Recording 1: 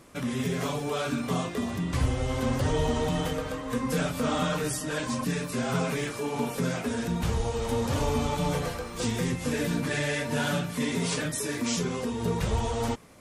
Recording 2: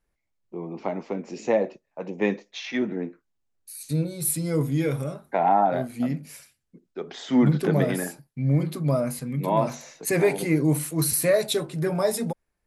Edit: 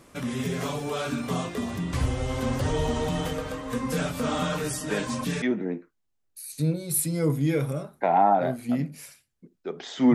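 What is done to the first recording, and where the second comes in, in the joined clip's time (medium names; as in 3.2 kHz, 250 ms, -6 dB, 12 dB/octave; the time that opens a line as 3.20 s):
recording 1
4.90 s: add recording 2 from 2.21 s 0.52 s -7 dB
5.42 s: go over to recording 2 from 2.73 s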